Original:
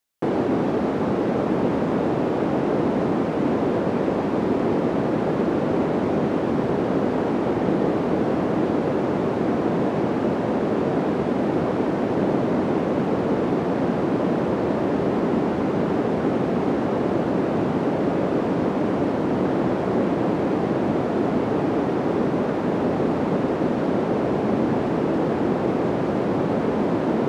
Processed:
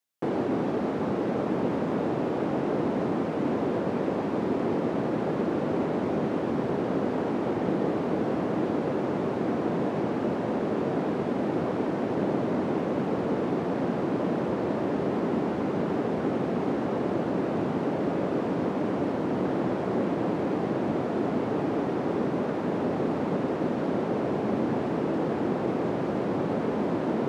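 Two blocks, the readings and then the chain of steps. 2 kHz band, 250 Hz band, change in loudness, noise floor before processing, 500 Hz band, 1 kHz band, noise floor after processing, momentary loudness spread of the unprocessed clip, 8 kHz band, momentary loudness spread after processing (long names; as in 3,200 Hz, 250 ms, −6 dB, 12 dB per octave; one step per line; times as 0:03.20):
−5.5 dB, −5.5 dB, −5.5 dB, −24 dBFS, −5.5 dB, −5.5 dB, −30 dBFS, 1 LU, can't be measured, 1 LU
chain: high-pass filter 78 Hz
level −5.5 dB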